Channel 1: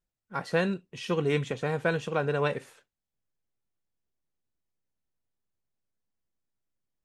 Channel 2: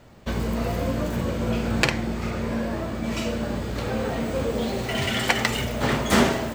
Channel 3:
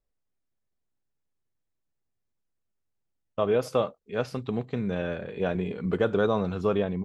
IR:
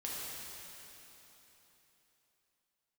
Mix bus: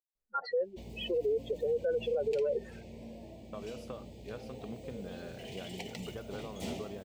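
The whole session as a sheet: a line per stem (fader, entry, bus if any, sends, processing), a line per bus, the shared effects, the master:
+2.0 dB, 0.00 s, no send, spectral contrast raised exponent 3.8; elliptic high-pass 300 Hz, stop band 50 dB; bell 490 Hz +5 dB 0.52 oct
-19.5 dB, 0.50 s, no send, Chebyshev band-stop 740–2500 Hz, order 2
-10.5 dB, 0.15 s, no send, compressor, threshold -30 dBFS, peak gain reduction 11 dB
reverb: off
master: limiter -25 dBFS, peak gain reduction 11.5 dB

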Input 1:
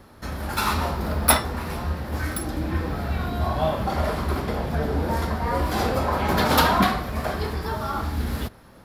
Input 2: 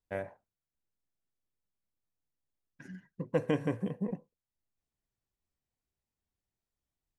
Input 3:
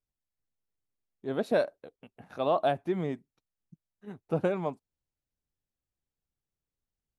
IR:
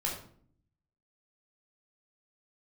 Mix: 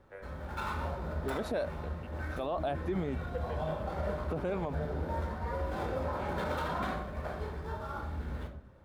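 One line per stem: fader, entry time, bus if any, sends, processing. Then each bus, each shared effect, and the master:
-17.5 dB, 0.00 s, send -3.5 dB, median filter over 9 samples; high shelf 5000 Hz -6 dB; small resonant body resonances 580/1500/3600 Hz, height 7 dB
-10.5 dB, 0.00 s, send -4.5 dB, rippled Chebyshev high-pass 350 Hz, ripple 9 dB
+1.0 dB, 0.00 s, no send, dry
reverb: on, RT60 0.55 s, pre-delay 12 ms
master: limiter -25 dBFS, peak gain reduction 11 dB

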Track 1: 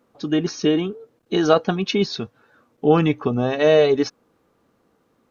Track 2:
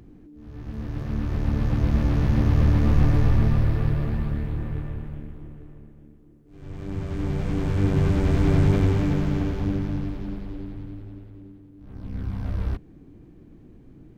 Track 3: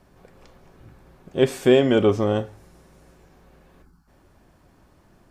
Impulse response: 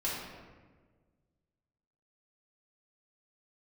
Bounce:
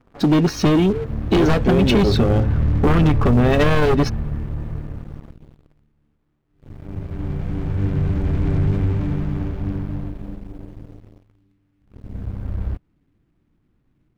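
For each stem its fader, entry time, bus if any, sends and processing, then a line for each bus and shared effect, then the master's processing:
+2.0 dB, 0.00 s, bus A, no send, one-sided fold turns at -17.5 dBFS
-15.5 dB, 0.00 s, no bus, no send, bit-crush 9-bit
-5.5 dB, 0.00 s, bus A, no send, LPF 1800 Hz 6 dB/oct
bus A: 0.0 dB, compressor 5:1, threshold -22 dBFS, peak gain reduction 12.5 dB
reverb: off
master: tone controls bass +6 dB, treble -10 dB; sample leveller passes 3

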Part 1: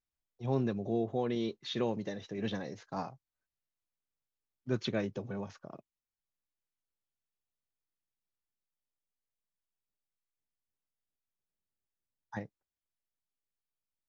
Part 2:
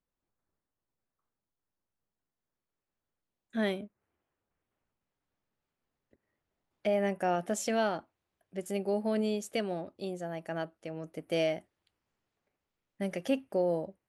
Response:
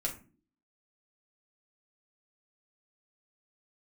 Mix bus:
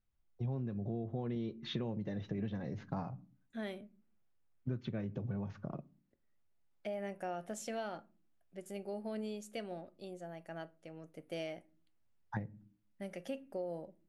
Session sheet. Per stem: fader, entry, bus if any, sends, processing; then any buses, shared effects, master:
+1.5 dB, 0.00 s, send -16.5 dB, tone controls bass +11 dB, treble -14 dB
-11.0 dB, 0.00 s, send -13.5 dB, dry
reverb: on, pre-delay 6 ms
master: compressor 12:1, threshold -35 dBFS, peak gain reduction 18.5 dB

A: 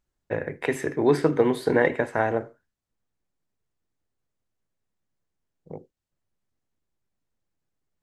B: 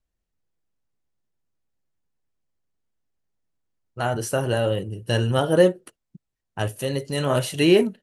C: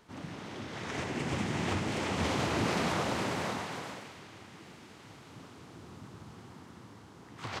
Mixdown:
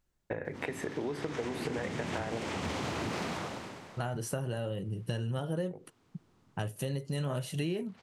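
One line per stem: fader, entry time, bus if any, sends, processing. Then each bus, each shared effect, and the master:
+1.0 dB, 0.00 s, no send, compressor 3:1, threshold -32 dBFS, peak gain reduction 13 dB
-5.0 dB, 0.00 s, no send, bell 160 Hz +9.5 dB 0.91 oct
-1.0 dB, 0.45 s, no send, wavefolder -22 dBFS; auto duck -17 dB, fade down 0.75 s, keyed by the second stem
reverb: off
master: compressor 8:1, threshold -31 dBFS, peak gain reduction 17 dB

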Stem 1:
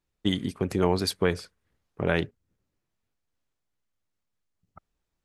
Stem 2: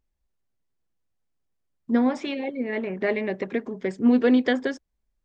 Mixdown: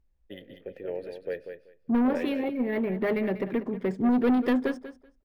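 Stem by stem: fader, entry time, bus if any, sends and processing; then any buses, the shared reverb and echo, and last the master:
+0.5 dB, 0.05 s, no send, echo send -8 dB, octaver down 1 oct, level -2 dB; vowel filter e
-0.5 dB, 0.00 s, no send, echo send -13.5 dB, low shelf 180 Hz +9.5 dB; soft clip -19 dBFS, distortion -9 dB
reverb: off
echo: feedback echo 0.191 s, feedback 16%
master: high shelf 4200 Hz -8.5 dB; decimation joined by straight lines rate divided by 3×

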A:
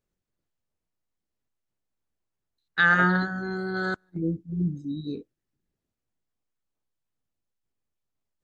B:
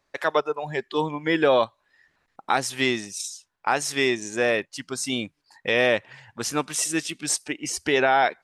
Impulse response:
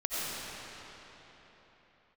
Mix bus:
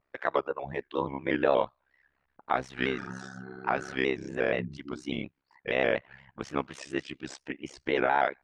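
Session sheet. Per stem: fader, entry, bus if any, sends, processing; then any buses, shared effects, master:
-5.0 dB, 0.00 s, no send, limiter -20.5 dBFS, peak gain reduction 11.5 dB; detuned doubles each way 29 cents
-1.5 dB, 0.00 s, no send, shaped vibrato square 4.2 Hz, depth 100 cents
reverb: off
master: LPF 2500 Hz 12 dB/oct; AM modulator 67 Hz, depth 95%

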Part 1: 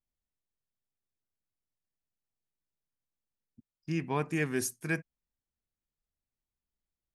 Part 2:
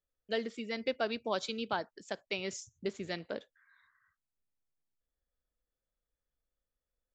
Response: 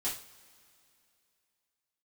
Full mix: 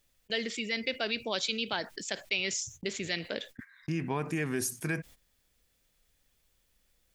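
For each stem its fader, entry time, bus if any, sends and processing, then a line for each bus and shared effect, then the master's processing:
+0.5 dB, 0.00 s, no send, compressor 6:1, threshold -31 dBFS, peak gain reduction 6.5 dB
-3.5 dB, 0.00 s, no send, resonant high shelf 1600 Hz +8 dB, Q 1.5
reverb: off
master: gate -56 dBFS, range -25 dB; fast leveller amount 50%

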